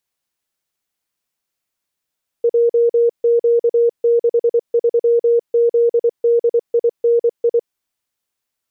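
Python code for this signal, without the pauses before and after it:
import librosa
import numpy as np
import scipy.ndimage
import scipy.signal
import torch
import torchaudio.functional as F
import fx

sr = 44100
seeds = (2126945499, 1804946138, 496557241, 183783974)

y = fx.morse(sr, text='JQ63ZDINI', wpm=24, hz=470.0, level_db=-10.0)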